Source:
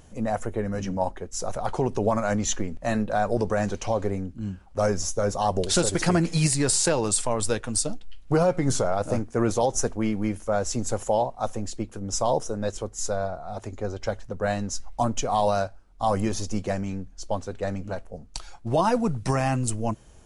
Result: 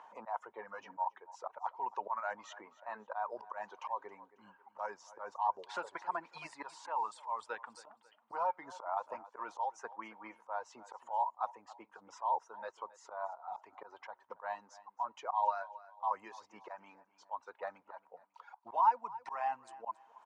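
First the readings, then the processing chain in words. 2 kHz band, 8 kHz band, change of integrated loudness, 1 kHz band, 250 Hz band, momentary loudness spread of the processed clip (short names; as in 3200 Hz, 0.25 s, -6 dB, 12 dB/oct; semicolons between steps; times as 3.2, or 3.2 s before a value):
-12.5 dB, -33.5 dB, -13.0 dB, -6.0 dB, -32.5 dB, 17 LU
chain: reverb removal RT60 1.8 s; reverse; upward compressor, threshold -42 dBFS; reverse; ladder band-pass 1000 Hz, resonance 80%; auto swell 0.155 s; on a send: feedback echo 0.272 s, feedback 27%, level -21 dB; on the sum: three-band squash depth 40%; gain +4 dB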